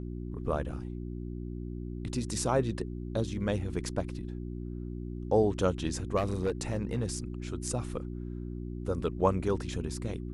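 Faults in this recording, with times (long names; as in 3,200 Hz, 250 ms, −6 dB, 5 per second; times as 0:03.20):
mains hum 60 Hz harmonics 6 −38 dBFS
0:06.16–0:07.18: clipping −24 dBFS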